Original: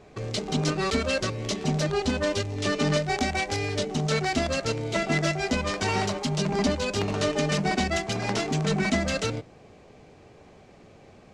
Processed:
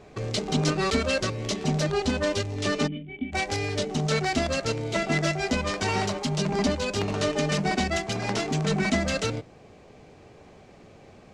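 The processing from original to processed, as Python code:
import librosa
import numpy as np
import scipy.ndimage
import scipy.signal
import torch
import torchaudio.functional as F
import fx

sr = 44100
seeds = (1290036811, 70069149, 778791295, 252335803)

y = fx.rider(x, sr, range_db=3, speed_s=2.0)
y = fx.formant_cascade(y, sr, vowel='i', at=(2.86, 3.32), fade=0.02)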